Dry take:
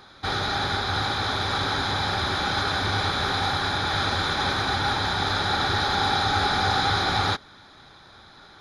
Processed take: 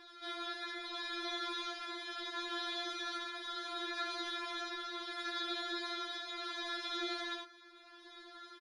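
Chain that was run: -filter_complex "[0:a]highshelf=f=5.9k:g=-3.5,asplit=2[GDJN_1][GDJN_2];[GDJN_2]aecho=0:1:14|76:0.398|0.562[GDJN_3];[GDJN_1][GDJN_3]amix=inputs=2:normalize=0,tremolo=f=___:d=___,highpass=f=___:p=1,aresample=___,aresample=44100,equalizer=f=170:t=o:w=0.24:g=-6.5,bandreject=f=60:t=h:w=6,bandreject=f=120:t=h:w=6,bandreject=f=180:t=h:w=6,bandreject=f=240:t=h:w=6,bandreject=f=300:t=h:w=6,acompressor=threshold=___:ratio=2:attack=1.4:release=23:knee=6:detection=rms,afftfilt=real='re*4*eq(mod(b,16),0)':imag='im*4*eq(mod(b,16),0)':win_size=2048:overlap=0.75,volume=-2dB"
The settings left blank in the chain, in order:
0.72, 0.51, 61, 22050, -39dB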